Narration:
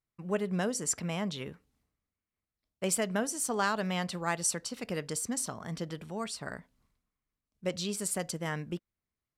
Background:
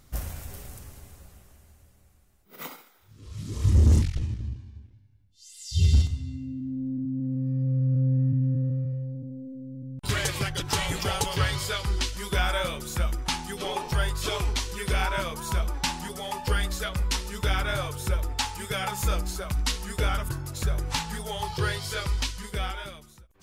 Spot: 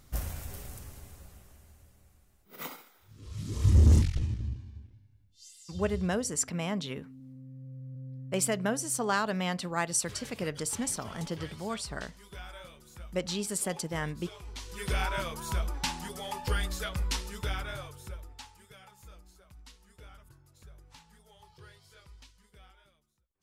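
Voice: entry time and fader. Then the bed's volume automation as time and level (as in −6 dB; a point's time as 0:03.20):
5.50 s, +1.0 dB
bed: 0:05.45 −1.5 dB
0:05.80 −19.5 dB
0:14.42 −19.5 dB
0:14.84 −4.5 dB
0:17.22 −4.5 dB
0:18.95 −26 dB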